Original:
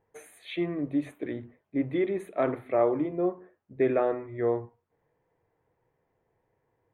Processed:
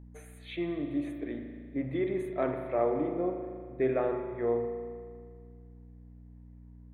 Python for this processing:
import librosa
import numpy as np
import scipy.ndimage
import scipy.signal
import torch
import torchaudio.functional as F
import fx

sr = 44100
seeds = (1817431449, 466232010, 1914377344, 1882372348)

y = fx.add_hum(x, sr, base_hz=60, snr_db=14)
y = fx.rev_spring(y, sr, rt60_s=2.0, pass_ms=(38,), chirp_ms=30, drr_db=5.0)
y = y * librosa.db_to_amplitude(-4.5)